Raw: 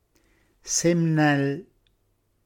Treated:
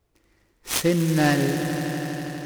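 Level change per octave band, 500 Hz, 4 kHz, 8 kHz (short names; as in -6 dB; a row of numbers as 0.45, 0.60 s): +1.5, +4.5, -3.0 dB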